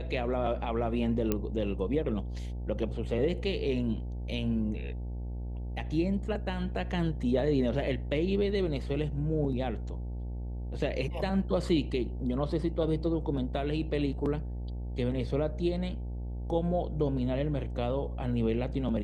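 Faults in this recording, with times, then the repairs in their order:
buzz 60 Hz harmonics 15 -36 dBFS
1.32 pop -14 dBFS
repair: de-click; de-hum 60 Hz, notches 15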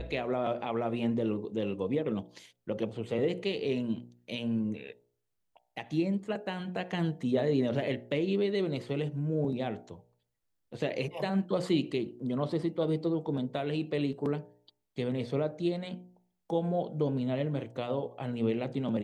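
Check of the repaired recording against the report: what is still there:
none

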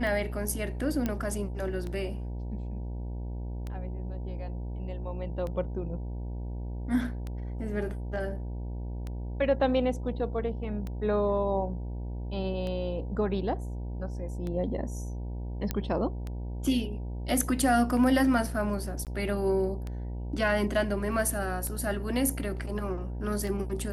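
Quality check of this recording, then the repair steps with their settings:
buzz 60 Hz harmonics 16 -35 dBFS
tick 33 1/3 rpm
1.06 pop -16 dBFS
15.71 pop -14 dBFS
19.05–19.07 gap 18 ms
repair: de-click; de-hum 60 Hz, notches 16; interpolate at 19.05, 18 ms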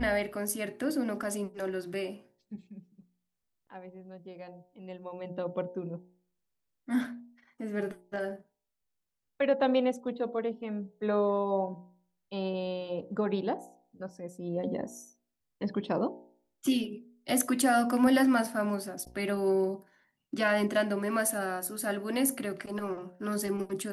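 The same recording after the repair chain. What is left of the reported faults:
1.06 pop

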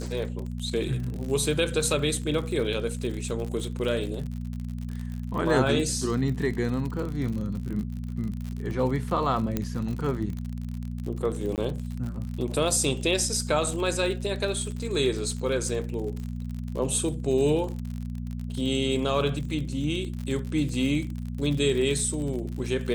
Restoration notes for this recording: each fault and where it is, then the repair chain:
crackle 54/s -32 dBFS
hum 60 Hz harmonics 4 -33 dBFS
9.57 pop -13 dBFS
11.56–11.58 gap 18 ms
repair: de-click; de-hum 60 Hz, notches 4; interpolate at 11.56, 18 ms

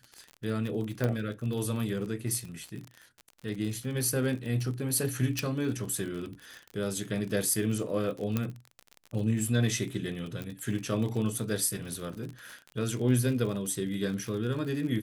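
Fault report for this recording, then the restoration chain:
crackle 41/s -35 dBFS
1.04 pop -16 dBFS
5.39 pop -14 dBFS
8.37 pop -15 dBFS
10.42 pop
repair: de-click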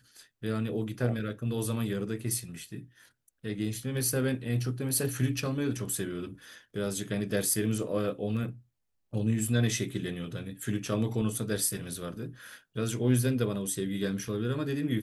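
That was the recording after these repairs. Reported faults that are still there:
5.39 pop
8.37 pop

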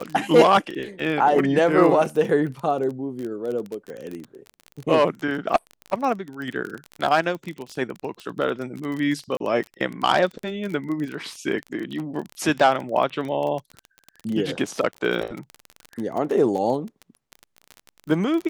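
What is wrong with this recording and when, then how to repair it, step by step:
crackle 25/s -27 dBFS
9.37–9.4 gap 32 ms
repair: de-click; interpolate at 9.37, 32 ms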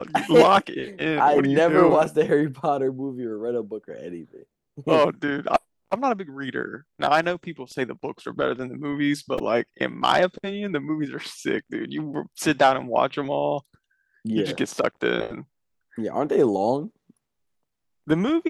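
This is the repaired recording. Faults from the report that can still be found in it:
none

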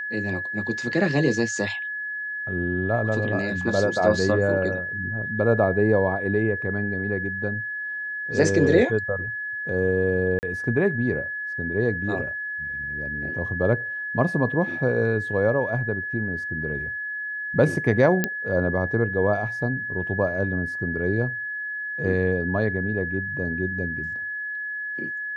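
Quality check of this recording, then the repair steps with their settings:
tone 1700 Hz -28 dBFS
10.39–10.43 gap 39 ms
18.24 pop -7 dBFS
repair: de-click; notch 1700 Hz, Q 30; interpolate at 10.39, 39 ms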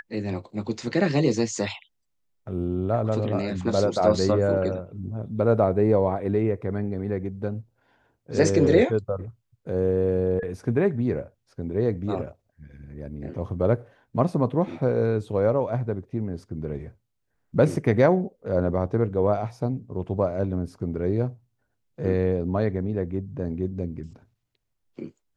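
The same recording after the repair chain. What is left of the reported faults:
none

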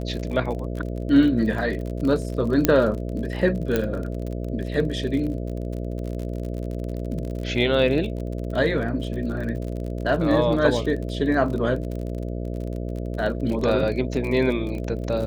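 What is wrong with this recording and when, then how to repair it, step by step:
buzz 60 Hz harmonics 11 -29 dBFS
crackle 38/s -30 dBFS
2.65 pop -2 dBFS
3.76 pop -9 dBFS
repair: de-click; de-hum 60 Hz, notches 11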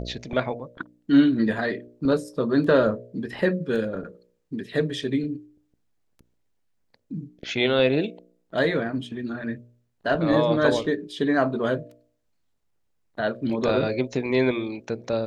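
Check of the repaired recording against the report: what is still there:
2.65 pop
3.76 pop

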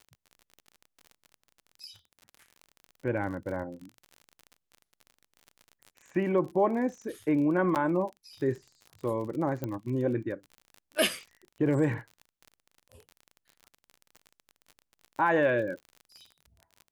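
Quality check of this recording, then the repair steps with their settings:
crackle 40/s -38 dBFS
7.75–7.76 gap 8.6 ms
9.64 pop -20 dBFS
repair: de-click; interpolate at 7.75, 8.6 ms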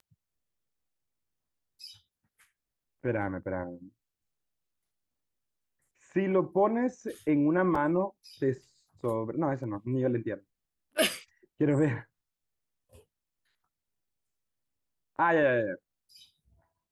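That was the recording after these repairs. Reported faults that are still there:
9.64 pop

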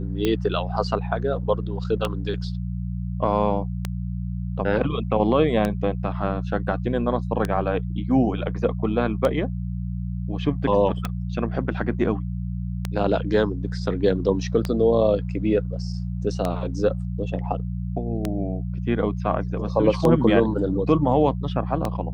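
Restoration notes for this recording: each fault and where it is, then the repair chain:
hum 60 Hz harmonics 3 -28 dBFS
tick 33 1/3 rpm -10 dBFS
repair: de-click; de-hum 60 Hz, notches 3

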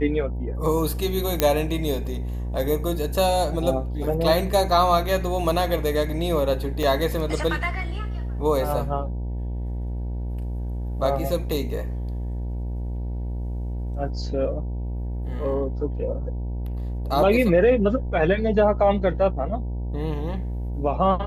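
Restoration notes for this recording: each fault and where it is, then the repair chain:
buzz 60 Hz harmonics 16 -28 dBFS
1.4 pop -3 dBFS
6.83 gap 3 ms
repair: de-click; de-hum 60 Hz, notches 16; interpolate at 6.83, 3 ms

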